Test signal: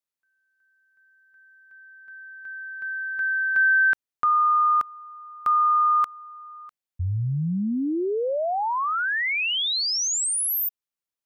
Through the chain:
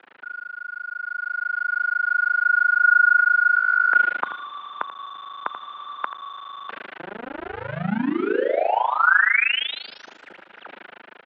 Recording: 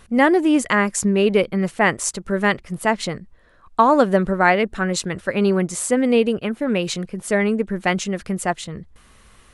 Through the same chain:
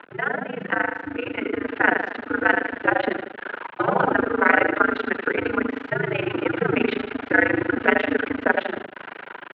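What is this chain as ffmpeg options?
-filter_complex "[0:a]aeval=exprs='val(0)+0.5*0.0422*sgn(val(0))':c=same,acrossover=split=310 2200:gain=0.0794 1 0.251[s0][s1][s2];[s0][s1][s2]amix=inputs=3:normalize=0,asplit=2[s3][s4];[s4]aecho=0:1:85|170|255|340|425|510:0.376|0.199|0.106|0.056|0.0297|0.0157[s5];[s3][s5]amix=inputs=2:normalize=0,tremolo=f=26:d=0.974,afftfilt=real='re*lt(hypot(re,im),0.501)':imag='im*lt(hypot(re,im),0.501)':win_size=1024:overlap=0.75,aeval=exprs='val(0)*gte(abs(val(0)),0.00501)':c=same,equalizer=f=1600:t=o:w=0.3:g=6.5,highpass=f=300:t=q:w=0.5412,highpass=f=300:t=q:w=1.307,lowpass=f=3300:t=q:w=0.5176,lowpass=f=3300:t=q:w=0.7071,lowpass=f=3300:t=q:w=1.932,afreqshift=-110,dynaudnorm=f=250:g=11:m=3.98,bandreject=f=1100:w=7.8"

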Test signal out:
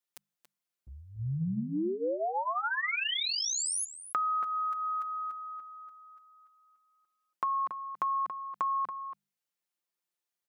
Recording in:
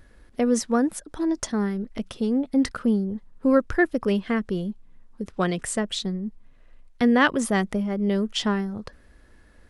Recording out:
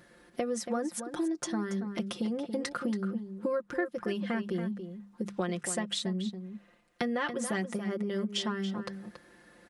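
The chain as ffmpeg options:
-filter_complex "[0:a]highpass=150,bandreject=f=50:t=h:w=6,bandreject=f=100:t=h:w=6,bandreject=f=150:t=h:w=6,bandreject=f=200:t=h:w=6,aecho=1:1:5.7:0.81,acompressor=threshold=0.0316:ratio=6,asplit=2[s0][s1];[s1]adelay=279.9,volume=0.355,highshelf=f=4000:g=-6.3[s2];[s0][s2]amix=inputs=2:normalize=0"

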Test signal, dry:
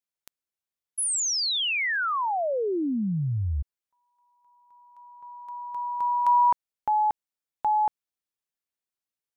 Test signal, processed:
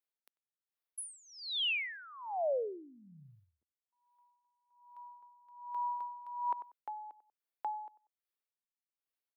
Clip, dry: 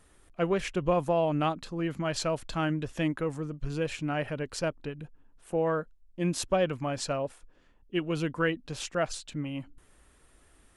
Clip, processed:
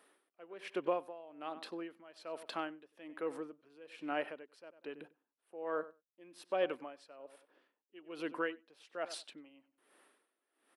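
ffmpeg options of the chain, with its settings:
-filter_complex "[0:a]highpass=f=300:w=0.5412,highpass=f=300:w=1.3066,equalizer=f=6900:t=o:w=0.58:g=-14,asplit=2[s0][s1];[s1]acompressor=threshold=0.01:ratio=6:release=75,volume=0.841[s2];[s0][s2]amix=inputs=2:normalize=0,asplit=2[s3][s4];[s4]adelay=95,lowpass=f=2400:p=1,volume=0.141,asplit=2[s5][s6];[s6]adelay=95,lowpass=f=2400:p=1,volume=0.18[s7];[s3][s5][s7]amix=inputs=3:normalize=0,aeval=exprs='val(0)*pow(10,-21*(0.5-0.5*cos(2*PI*1.2*n/s))/20)':c=same,volume=0.501"

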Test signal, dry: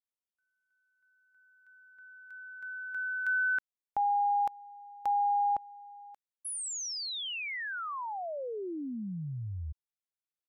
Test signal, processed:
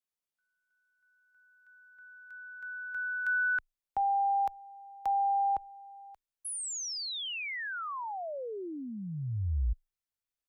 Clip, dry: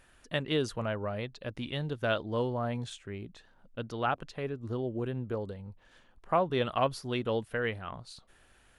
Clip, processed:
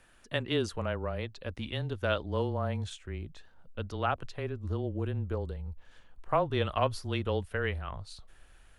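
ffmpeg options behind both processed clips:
-af "afreqshift=-20,asubboost=boost=3.5:cutoff=99"

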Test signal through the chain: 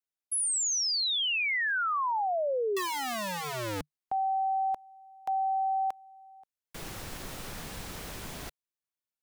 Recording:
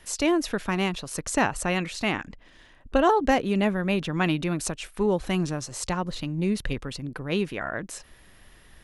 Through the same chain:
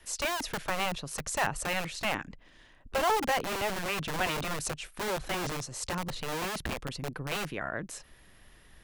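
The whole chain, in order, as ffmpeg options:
-filter_complex "[0:a]adynamicequalizer=threshold=0.00501:dfrequency=150:dqfactor=5.2:tfrequency=150:tqfactor=5.2:attack=5:release=100:ratio=0.375:range=2.5:mode=boostabove:tftype=bell,acrossover=split=460|1900[s0][s1][s2];[s0]aeval=exprs='(mod(18.8*val(0)+1,2)-1)/18.8':c=same[s3];[s3][s1][s2]amix=inputs=3:normalize=0,volume=0.631"

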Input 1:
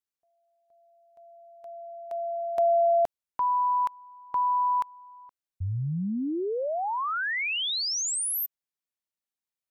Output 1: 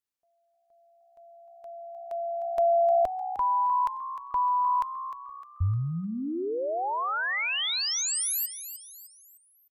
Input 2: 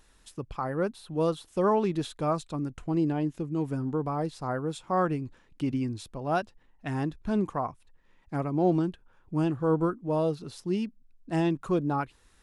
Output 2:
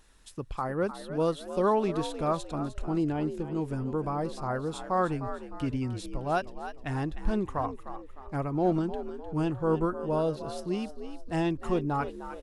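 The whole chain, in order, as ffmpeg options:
-filter_complex "[0:a]asplit=5[s0][s1][s2][s3][s4];[s1]adelay=305,afreqshift=64,volume=0.266[s5];[s2]adelay=610,afreqshift=128,volume=0.112[s6];[s3]adelay=915,afreqshift=192,volume=0.0468[s7];[s4]adelay=1220,afreqshift=256,volume=0.0197[s8];[s0][s5][s6][s7][s8]amix=inputs=5:normalize=0,asubboost=boost=6.5:cutoff=69"

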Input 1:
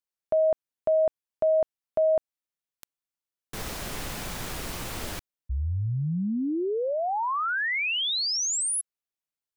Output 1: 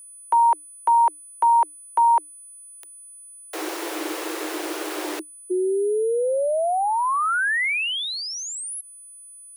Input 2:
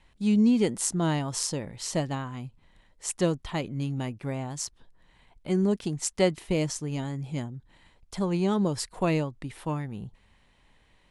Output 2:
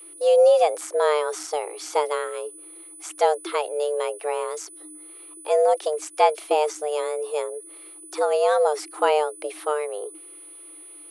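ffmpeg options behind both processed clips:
-filter_complex "[0:a]afreqshift=300,aeval=exprs='val(0)+0.00447*sin(2*PI*9900*n/s)':c=same,acrossover=split=2600[s0][s1];[s1]acompressor=threshold=0.0126:ratio=4:attack=1:release=60[s2];[s0][s2]amix=inputs=2:normalize=0,volume=1.88"

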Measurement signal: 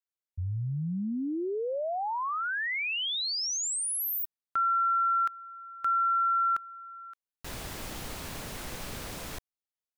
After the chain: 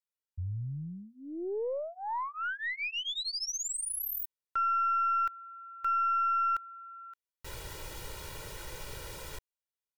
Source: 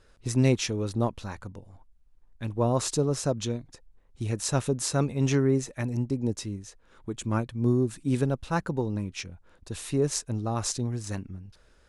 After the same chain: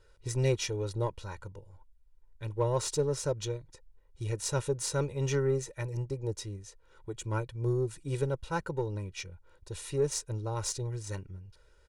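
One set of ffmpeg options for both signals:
-af "aecho=1:1:2.1:0.96,aeval=exprs='0.376*(cos(1*acos(clip(val(0)/0.376,-1,1)))-cos(1*PI/2))+0.0075*(cos(8*acos(clip(val(0)/0.376,-1,1)))-cos(8*PI/2))':c=same,volume=0.447"

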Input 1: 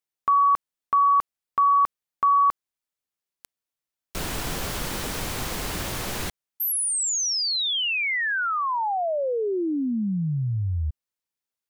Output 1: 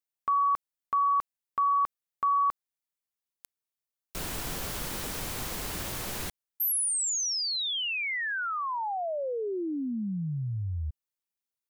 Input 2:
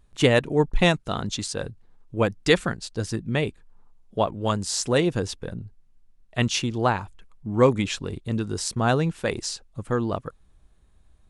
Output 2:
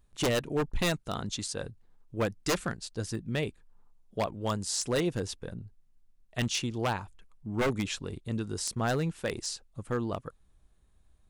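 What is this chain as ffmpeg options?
-af "aeval=exprs='0.188*(abs(mod(val(0)/0.188+3,4)-2)-1)':c=same,crystalizer=i=0.5:c=0,volume=0.473"

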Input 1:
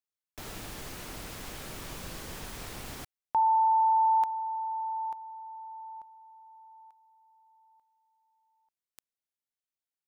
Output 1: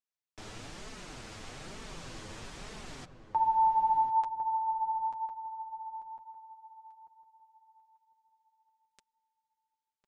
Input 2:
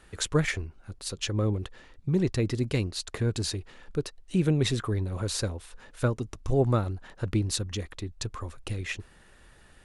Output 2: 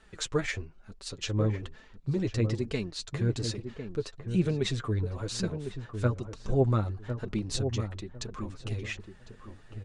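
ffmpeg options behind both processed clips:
-filter_complex "[0:a]lowpass=f=8100:w=0.5412,lowpass=f=8100:w=1.3066,flanger=delay=4.5:depth=5:regen=15:speed=1.1:shape=sinusoidal,asplit=2[s0][s1];[s1]adelay=1053,lowpass=f=930:p=1,volume=0.447,asplit=2[s2][s3];[s3]adelay=1053,lowpass=f=930:p=1,volume=0.23,asplit=2[s4][s5];[s5]adelay=1053,lowpass=f=930:p=1,volume=0.23[s6];[s2][s4][s6]amix=inputs=3:normalize=0[s7];[s0][s7]amix=inputs=2:normalize=0"

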